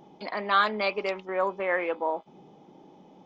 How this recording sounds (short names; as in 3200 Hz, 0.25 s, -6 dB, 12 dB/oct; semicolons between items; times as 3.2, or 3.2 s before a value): noise floor -55 dBFS; spectral tilt -1.0 dB/oct